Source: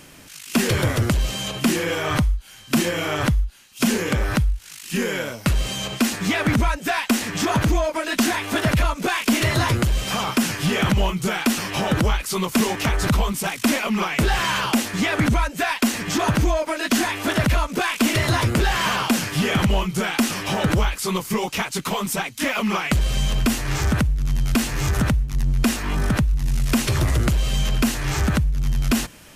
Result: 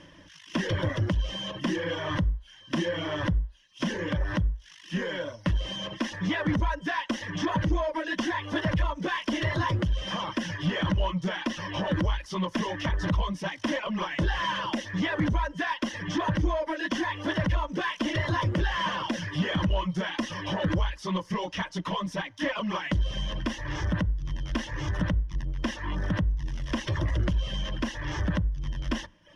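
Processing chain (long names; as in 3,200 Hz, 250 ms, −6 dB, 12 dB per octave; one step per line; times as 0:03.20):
0:10.58–0:11.85: running median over 3 samples
reverb reduction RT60 0.66 s
EQ curve with evenly spaced ripples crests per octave 1.2, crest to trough 11 dB
in parallel at −4.5 dB: hard clipping −25 dBFS, distortion −5 dB
on the sum: high-frequency loss of the air 170 metres
on a send at −24 dB: convolution reverb RT60 0.60 s, pre-delay 3 ms
on the sum: level −9 dB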